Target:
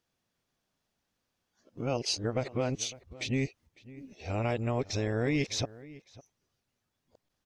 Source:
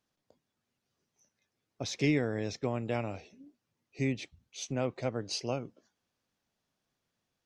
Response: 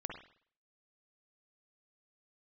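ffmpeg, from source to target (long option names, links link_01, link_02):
-filter_complex "[0:a]areverse,agate=range=-6dB:threshold=-57dB:ratio=16:detection=peak,asubboost=boost=3:cutoff=92,acompressor=threshold=-35dB:ratio=3,asplit=2[link_01][link_02];[link_02]adelay=553.9,volume=-19dB,highshelf=frequency=4000:gain=-12.5[link_03];[link_01][link_03]amix=inputs=2:normalize=0,volume=7.5dB"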